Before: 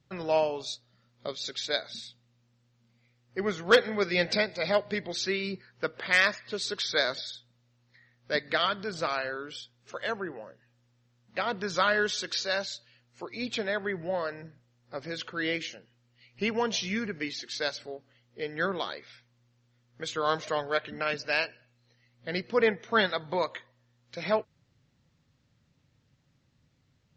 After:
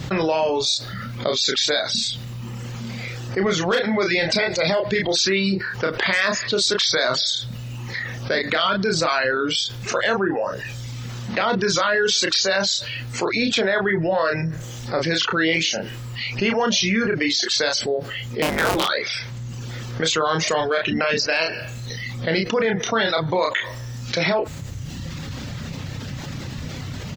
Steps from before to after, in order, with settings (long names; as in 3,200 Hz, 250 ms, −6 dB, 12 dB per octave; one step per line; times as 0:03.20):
0:18.42–0:18.85: sub-harmonics by changed cycles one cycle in 3, inverted
reverb reduction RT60 0.83 s
brickwall limiter −23.5 dBFS, peak gain reduction 11.5 dB
double-tracking delay 31 ms −6 dB
envelope flattener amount 70%
level +8.5 dB